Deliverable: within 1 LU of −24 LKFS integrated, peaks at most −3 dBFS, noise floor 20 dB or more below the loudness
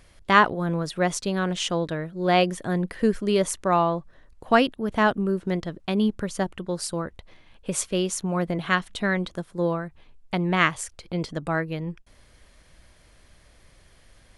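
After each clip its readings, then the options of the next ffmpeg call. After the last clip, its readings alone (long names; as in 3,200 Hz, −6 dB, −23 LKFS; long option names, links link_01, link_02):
integrated loudness −25.0 LKFS; sample peak −3.0 dBFS; target loudness −24.0 LKFS
→ -af "volume=1dB,alimiter=limit=-3dB:level=0:latency=1"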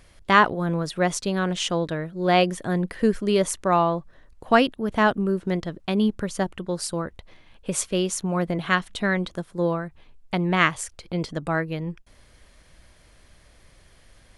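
integrated loudness −24.0 LKFS; sample peak −3.0 dBFS; background noise floor −55 dBFS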